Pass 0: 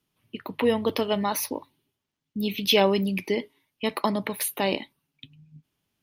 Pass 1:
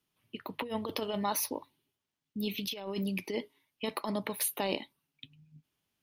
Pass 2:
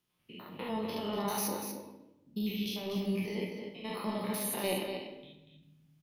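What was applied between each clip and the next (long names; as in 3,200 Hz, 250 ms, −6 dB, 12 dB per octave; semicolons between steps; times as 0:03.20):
dynamic equaliser 2,000 Hz, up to −4 dB, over −45 dBFS, Q 1.4; compressor whose output falls as the input rises −25 dBFS, ratio −0.5; low-shelf EQ 430 Hz −4.5 dB; level −5 dB
spectrum averaged block by block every 100 ms; single-tap delay 240 ms −7.5 dB; rectangular room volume 400 cubic metres, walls mixed, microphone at 0.91 metres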